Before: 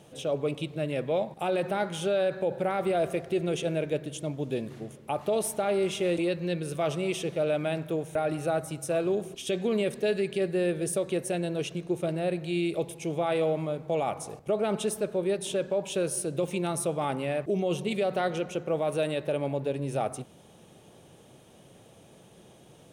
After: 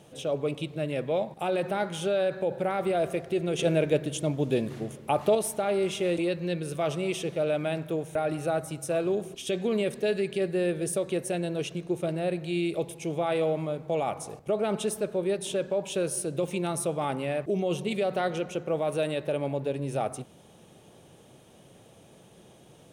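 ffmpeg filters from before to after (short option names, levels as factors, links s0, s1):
-filter_complex "[0:a]asplit=3[s0][s1][s2];[s0]atrim=end=3.592[s3];[s1]atrim=start=3.588:end=5.352,asetpts=PTS-STARTPTS,volume=1.78[s4];[s2]atrim=start=5.348[s5];[s3][s4]acrossfade=d=0.004:c1=hsin:c2=hsin[s6];[s6][s5]acrossfade=d=0.004:c1=hsin:c2=hsin"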